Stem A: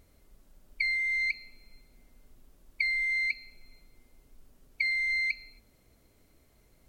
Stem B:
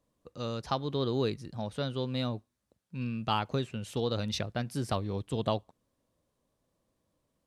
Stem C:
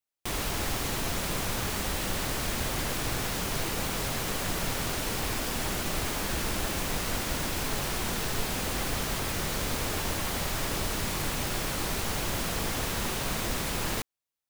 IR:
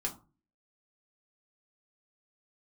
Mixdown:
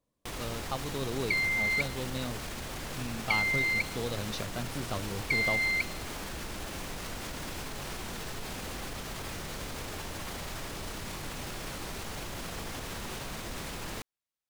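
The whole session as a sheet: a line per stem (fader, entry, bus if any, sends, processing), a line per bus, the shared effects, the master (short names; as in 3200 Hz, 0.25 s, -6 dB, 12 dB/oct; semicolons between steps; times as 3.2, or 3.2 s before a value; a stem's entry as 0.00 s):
0.0 dB, 0.50 s, no send, dry
-4.5 dB, 0.00 s, no send, dry
-3.0 dB, 0.00 s, no send, high shelf 11000 Hz -7 dB; limiter -26.5 dBFS, peak gain reduction 8.5 dB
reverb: off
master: dry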